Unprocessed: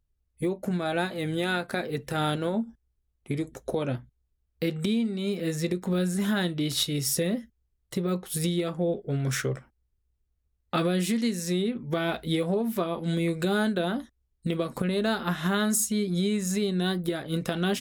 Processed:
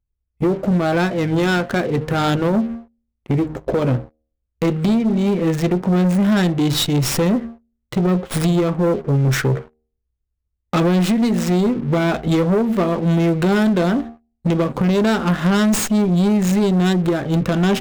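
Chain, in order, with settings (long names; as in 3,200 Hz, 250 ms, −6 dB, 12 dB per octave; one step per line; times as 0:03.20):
adaptive Wiener filter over 9 samples
low-shelf EQ 400 Hz +5 dB
hum removal 77.2 Hz, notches 10
leveller curve on the samples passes 3
windowed peak hold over 3 samples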